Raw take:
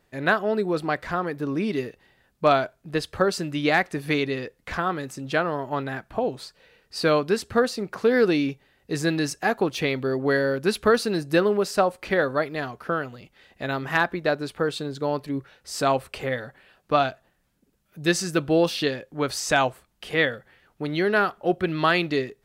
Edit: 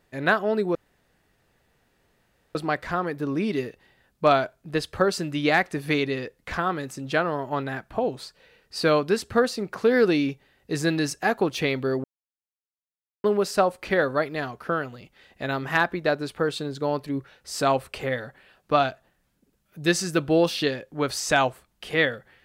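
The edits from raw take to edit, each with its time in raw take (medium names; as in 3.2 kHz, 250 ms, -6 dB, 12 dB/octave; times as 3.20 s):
0.75 s: insert room tone 1.80 s
10.24–11.44 s: mute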